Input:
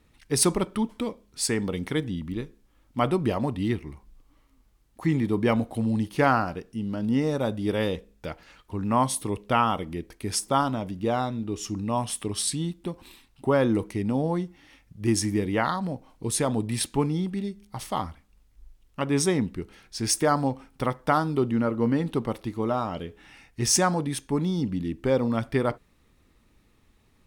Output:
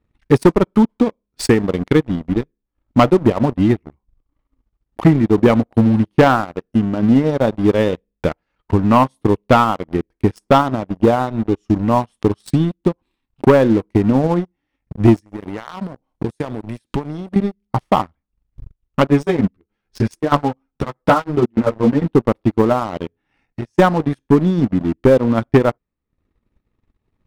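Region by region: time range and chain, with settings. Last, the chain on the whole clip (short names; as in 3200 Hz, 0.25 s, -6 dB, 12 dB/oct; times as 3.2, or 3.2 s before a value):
15.2–17.36 high shelf 4700 Hz +9 dB + compressor 4:1, threshold -35 dBFS
19.07–22.02 chopper 1.6 Hz, depth 65%, duty 80% + ensemble effect
23.07–23.79 notches 50/100/150/200/250/300 Hz + compressor 2.5:1, threshold -45 dBFS
whole clip: LPF 1300 Hz 6 dB/oct; transient shaper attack +10 dB, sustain -11 dB; sample leveller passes 3; gain -1 dB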